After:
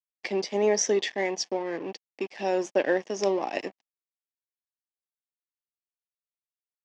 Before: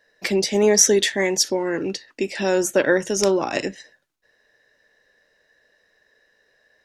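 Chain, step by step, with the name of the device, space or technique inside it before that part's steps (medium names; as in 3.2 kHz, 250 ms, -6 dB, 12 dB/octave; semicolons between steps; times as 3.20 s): blown loudspeaker (crossover distortion -33.5 dBFS; cabinet simulation 250–5200 Hz, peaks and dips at 750 Hz +6 dB, 1.4 kHz -10 dB, 3.9 kHz -7 dB); trim -5 dB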